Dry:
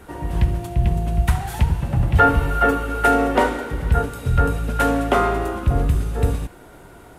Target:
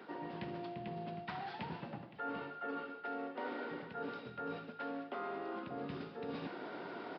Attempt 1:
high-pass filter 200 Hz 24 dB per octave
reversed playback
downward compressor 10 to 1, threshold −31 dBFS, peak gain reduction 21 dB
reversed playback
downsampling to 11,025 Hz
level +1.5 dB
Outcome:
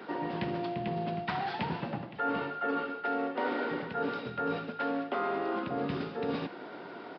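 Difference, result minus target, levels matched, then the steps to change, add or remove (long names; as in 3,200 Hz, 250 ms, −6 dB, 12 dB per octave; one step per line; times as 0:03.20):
downward compressor: peak gain reduction −10 dB
change: downward compressor 10 to 1, threshold −42 dBFS, peak gain reduction 31 dB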